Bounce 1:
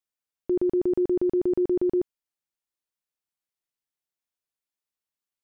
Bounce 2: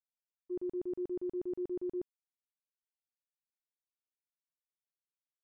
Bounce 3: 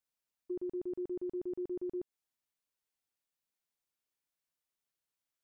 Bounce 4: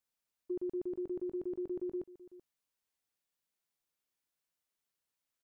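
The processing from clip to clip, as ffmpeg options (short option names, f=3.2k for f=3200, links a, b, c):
-af "agate=range=-33dB:threshold=-17dB:ratio=3:detection=peak,volume=-7dB"
-af "acompressor=threshold=-41dB:ratio=6,volume=5dB"
-af "aecho=1:1:381:0.133,volume=1dB"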